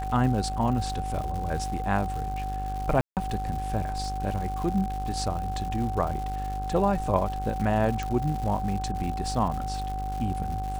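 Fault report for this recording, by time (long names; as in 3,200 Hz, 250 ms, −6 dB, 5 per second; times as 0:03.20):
mains buzz 50 Hz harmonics 33 −33 dBFS
surface crackle 240 per second −34 dBFS
whistle 760 Hz −32 dBFS
0:03.01–0:03.17: drop-out 158 ms
0:08.03: click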